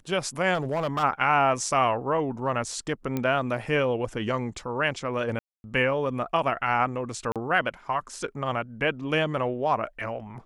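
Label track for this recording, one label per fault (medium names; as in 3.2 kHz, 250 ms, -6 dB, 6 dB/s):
0.540000	1.040000	clipped -22.5 dBFS
3.170000	3.170000	pop -15 dBFS
5.390000	5.640000	dropout 251 ms
7.320000	7.360000	dropout 37 ms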